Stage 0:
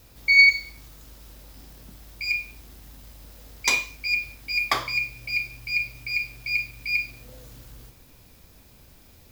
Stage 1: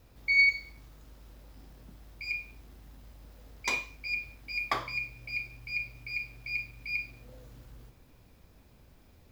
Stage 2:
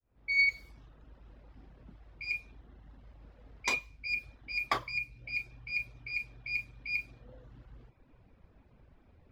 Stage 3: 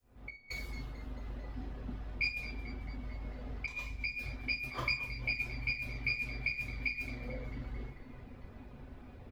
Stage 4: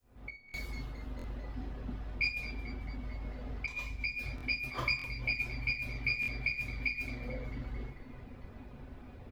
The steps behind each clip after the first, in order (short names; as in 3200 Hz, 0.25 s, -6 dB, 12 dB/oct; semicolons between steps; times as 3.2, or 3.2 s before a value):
high shelf 3200 Hz -11 dB; gain -4.5 dB
opening faded in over 0.59 s; low-pass opened by the level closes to 1900 Hz, open at -30 dBFS; reverb removal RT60 0.78 s
negative-ratio compressor -40 dBFS, ratio -0.5; frequency-shifting echo 0.221 s, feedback 62%, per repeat -62 Hz, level -14.5 dB; reverb RT60 0.35 s, pre-delay 4 ms, DRR 3 dB; gain +3 dB
stuck buffer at 0.47/1.17/4.36/4.97/6.21, samples 1024, times 2; gain +1.5 dB